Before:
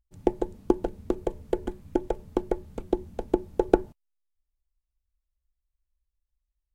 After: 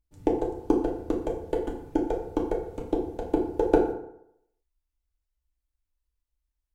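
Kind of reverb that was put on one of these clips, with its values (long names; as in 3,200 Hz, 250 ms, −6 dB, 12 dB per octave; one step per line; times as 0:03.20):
feedback delay network reverb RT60 0.76 s, low-frequency decay 0.9×, high-frequency decay 0.6×, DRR −1.5 dB
level −3 dB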